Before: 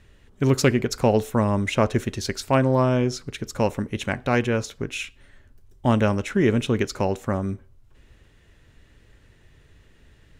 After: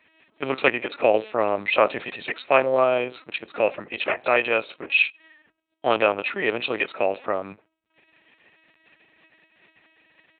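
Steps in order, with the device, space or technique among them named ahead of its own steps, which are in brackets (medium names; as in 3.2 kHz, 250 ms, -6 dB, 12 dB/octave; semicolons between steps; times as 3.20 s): comb 1.6 ms, depth 98%; talking toy (LPC vocoder at 8 kHz pitch kept; high-pass 420 Hz 12 dB/octave; peaking EQ 2.5 kHz +8 dB 0.26 oct); 4.50–5.97 s: dynamic bell 4.4 kHz, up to +4 dB, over -32 dBFS, Q 0.81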